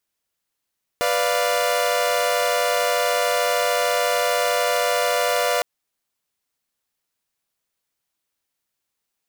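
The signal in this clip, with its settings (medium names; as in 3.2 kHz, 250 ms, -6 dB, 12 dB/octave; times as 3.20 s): chord B4/D5/F5 saw, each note -20.5 dBFS 4.61 s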